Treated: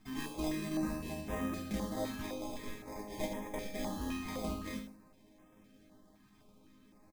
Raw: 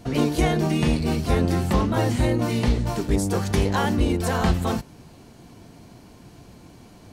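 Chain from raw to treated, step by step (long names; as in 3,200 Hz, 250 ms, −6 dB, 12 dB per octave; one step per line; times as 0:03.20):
0:02.21–0:03.82: spectral tilt +4 dB per octave
decimation without filtering 31×
resonators tuned to a chord G#3 major, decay 0.3 s
on a send: repeating echo 77 ms, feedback 30%, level −10 dB
on the sum: notch on a step sequencer 3.9 Hz 540–4,400 Hz
level +2 dB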